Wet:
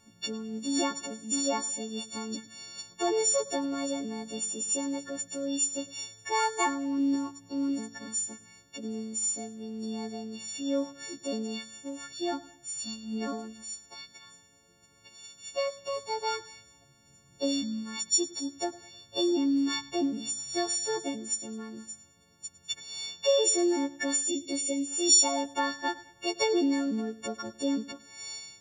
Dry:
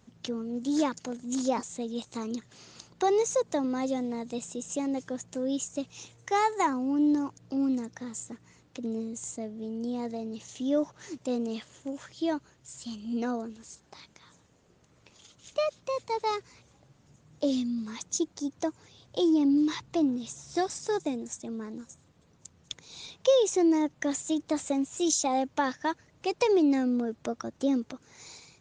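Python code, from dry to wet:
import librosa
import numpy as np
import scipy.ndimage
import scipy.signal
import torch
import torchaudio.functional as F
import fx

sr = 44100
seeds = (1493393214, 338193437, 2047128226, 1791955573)

y = fx.freq_snap(x, sr, grid_st=4)
y = fx.echo_feedback(y, sr, ms=104, feedback_pct=39, wet_db=-19)
y = fx.spec_box(y, sr, start_s=24.28, length_s=0.6, low_hz=650.0, high_hz=1800.0, gain_db=-17)
y = y * 10.0 ** (-3.0 / 20.0)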